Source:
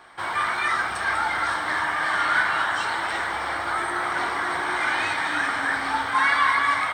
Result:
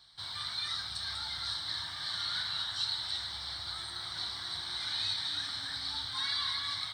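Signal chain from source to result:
drawn EQ curve 120 Hz 0 dB, 380 Hz −22 dB, 2,600 Hz −15 dB, 4,000 Hz +14 dB, 6,700 Hz −4 dB
level −5 dB

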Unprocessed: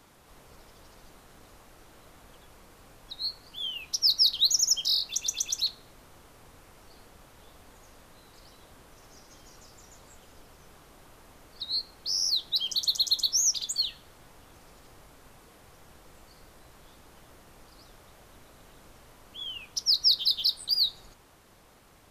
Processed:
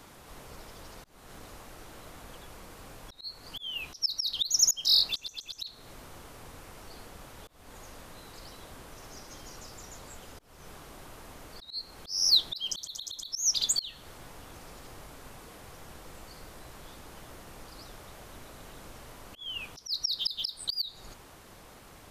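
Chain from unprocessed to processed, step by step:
volume swells 294 ms
level +6 dB

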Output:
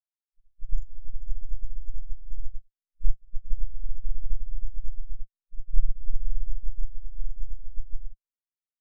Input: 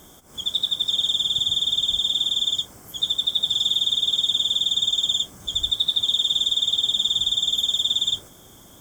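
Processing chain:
granular cloud 100 ms, grains 19 per second, pitch spread up and down by 0 semitones
notch comb filter 200 Hz
full-wave rectification
every bin expanded away from the loudest bin 4 to 1
level +7 dB

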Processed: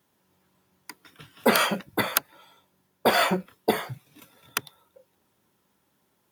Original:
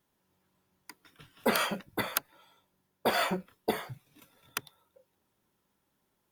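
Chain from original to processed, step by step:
high-pass filter 77 Hz
level +7 dB

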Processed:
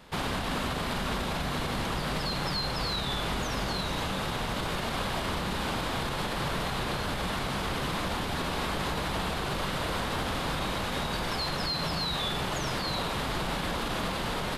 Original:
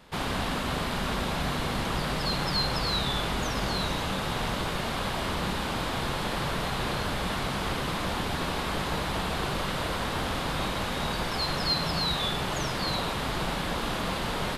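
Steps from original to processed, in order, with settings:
brickwall limiter −23.5 dBFS, peak gain reduction 8.5 dB
level +1.5 dB

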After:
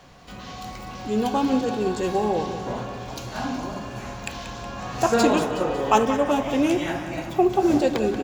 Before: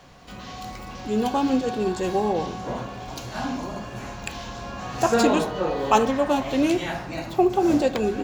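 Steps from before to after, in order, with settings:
0:05.38–0:07.45: notch filter 4,200 Hz, Q 5.2
repeating echo 184 ms, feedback 56%, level −11.5 dB

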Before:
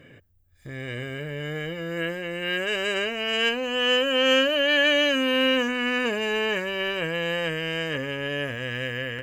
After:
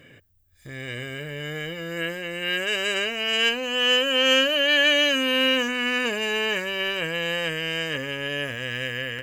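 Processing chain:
high-shelf EQ 2,300 Hz +8.5 dB
level −2 dB

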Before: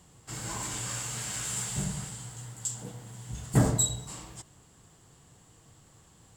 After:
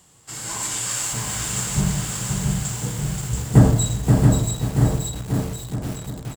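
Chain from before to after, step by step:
spectral tilt +1.5 dB per octave, from 0:01.12 −2 dB per octave
automatic gain control gain up to 4 dB
bouncing-ball delay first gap 680 ms, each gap 0.85×, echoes 5
feedback echo at a low word length 529 ms, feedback 35%, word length 6 bits, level −4 dB
level +2.5 dB

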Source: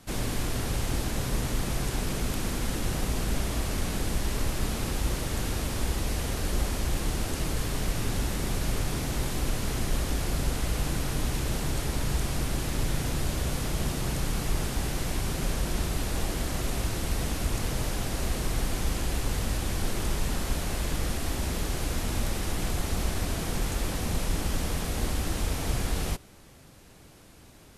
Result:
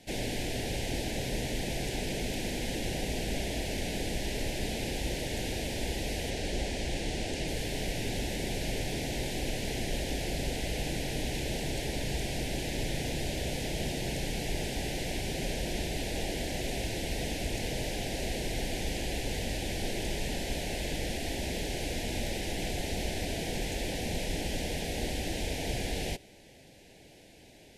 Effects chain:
0:06.30–0:07.48: low-pass filter 9,500 Hz 12 dB per octave
mid-hump overdrive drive 13 dB, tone 2,300 Hz, clips at −14 dBFS
Butterworth band-reject 1,200 Hz, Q 1
level −2 dB

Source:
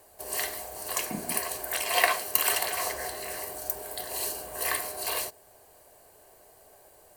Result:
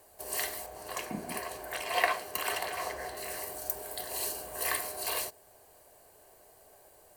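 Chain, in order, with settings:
0:00.66–0:03.17: high-shelf EQ 4,300 Hz −11 dB
level −2.5 dB

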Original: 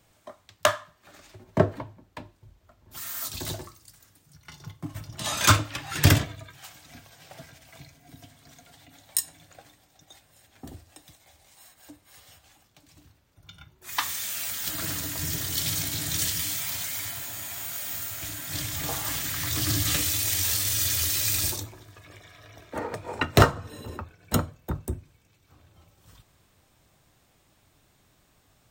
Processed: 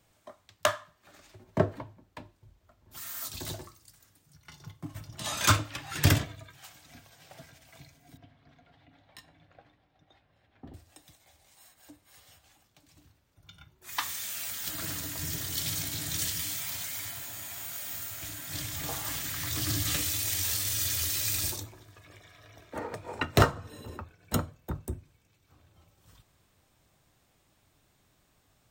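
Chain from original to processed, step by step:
0:08.17–0:10.74: high-frequency loss of the air 340 metres
level −4.5 dB

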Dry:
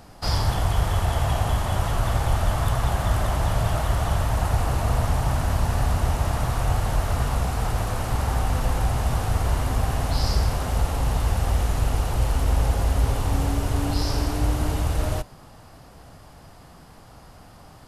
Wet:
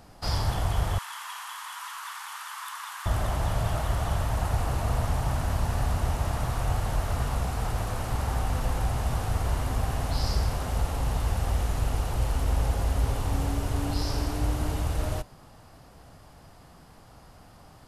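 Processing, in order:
0:00.98–0:03.06: Chebyshev high-pass filter 970 Hz, order 5
level −4.5 dB

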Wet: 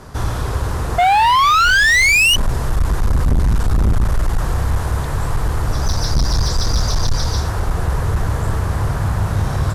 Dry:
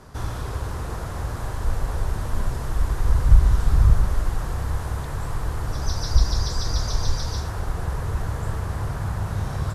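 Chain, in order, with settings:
sound drawn into the spectrogram rise, 0:00.98–0:02.36, 690–3,000 Hz −15 dBFS
hard clipping −19.5 dBFS, distortion −6 dB
level +8.5 dB

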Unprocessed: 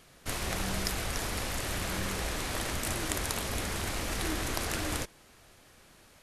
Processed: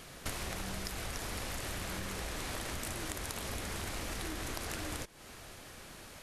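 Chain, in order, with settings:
downward compressor 16 to 1, threshold −43 dBFS, peak gain reduction 17.5 dB
level +7.5 dB

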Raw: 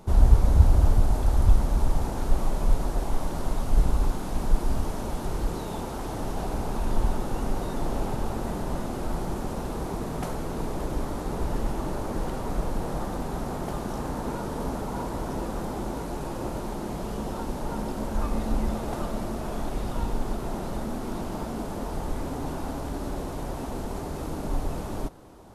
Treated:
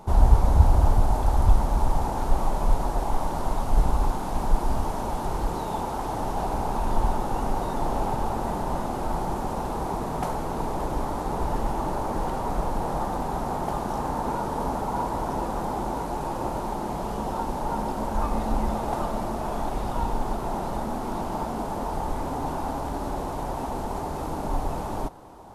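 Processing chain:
parametric band 870 Hz +9.5 dB 0.84 octaves

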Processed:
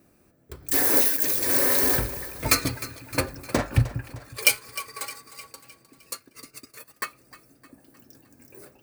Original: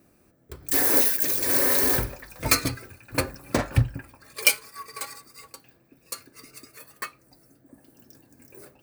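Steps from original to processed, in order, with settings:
echo with a time of its own for lows and highs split 390 Hz, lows 182 ms, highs 307 ms, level −15.5 dB
0:06.14–0:07.05: transient designer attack +3 dB, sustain −9 dB

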